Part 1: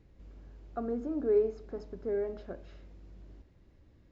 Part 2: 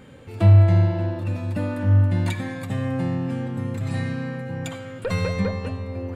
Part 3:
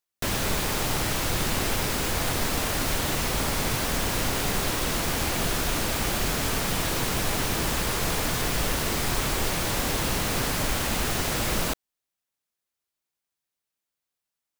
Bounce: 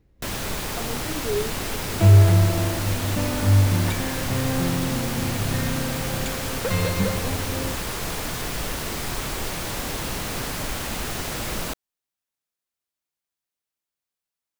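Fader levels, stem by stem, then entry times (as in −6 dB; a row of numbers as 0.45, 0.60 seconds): −0.5, 0.0, −2.5 decibels; 0.00, 1.60, 0.00 seconds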